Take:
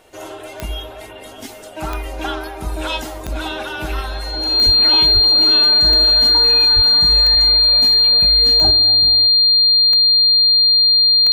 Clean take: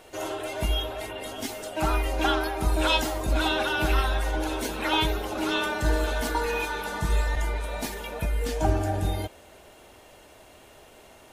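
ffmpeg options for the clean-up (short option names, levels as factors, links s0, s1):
-filter_complex "[0:a]adeclick=t=4,bandreject=f=4200:w=30,asplit=3[s0][s1][s2];[s0]afade=t=out:st=4.65:d=0.02[s3];[s1]highpass=f=140:w=0.5412,highpass=f=140:w=1.3066,afade=t=in:st=4.65:d=0.02,afade=t=out:st=4.77:d=0.02[s4];[s2]afade=t=in:st=4.77:d=0.02[s5];[s3][s4][s5]amix=inputs=3:normalize=0,asplit=3[s6][s7][s8];[s6]afade=t=out:st=5.13:d=0.02[s9];[s7]highpass=f=140:w=0.5412,highpass=f=140:w=1.3066,afade=t=in:st=5.13:d=0.02,afade=t=out:st=5.25:d=0.02[s10];[s8]afade=t=in:st=5.25:d=0.02[s11];[s9][s10][s11]amix=inputs=3:normalize=0,asplit=3[s12][s13][s14];[s12]afade=t=out:st=6.75:d=0.02[s15];[s13]highpass=f=140:w=0.5412,highpass=f=140:w=1.3066,afade=t=in:st=6.75:d=0.02,afade=t=out:st=6.87:d=0.02[s16];[s14]afade=t=in:st=6.87:d=0.02[s17];[s15][s16][s17]amix=inputs=3:normalize=0,asetnsamples=n=441:p=0,asendcmd='8.71 volume volume 8dB',volume=1"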